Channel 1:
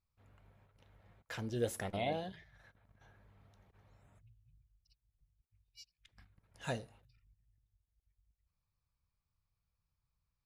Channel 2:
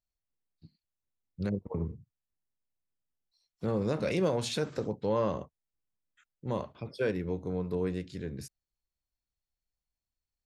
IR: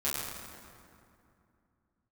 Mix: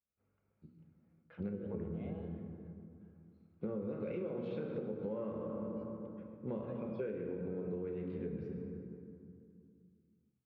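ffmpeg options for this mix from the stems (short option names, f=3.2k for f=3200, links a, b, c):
-filter_complex "[0:a]volume=-12dB,asplit=2[a][b];[b]volume=-11dB[c];[1:a]equalizer=f=1.5k:w=1.5:g=-2.5,volume=-3.5dB,asplit=2[d][e];[e]volume=-4.5dB[f];[2:a]atrim=start_sample=2205[g];[c][f]amix=inputs=2:normalize=0[h];[h][g]afir=irnorm=-1:irlink=0[i];[a][d][i]amix=inputs=3:normalize=0,highpass=110,equalizer=f=110:t=q:w=4:g=-7,equalizer=f=450:t=q:w=4:g=3,equalizer=f=700:t=q:w=4:g=-8,equalizer=f=990:t=q:w=4:g=-8,equalizer=f=1.8k:t=q:w=4:g=-9,lowpass=f=2.2k:w=0.5412,lowpass=f=2.2k:w=1.3066,acompressor=threshold=-36dB:ratio=12"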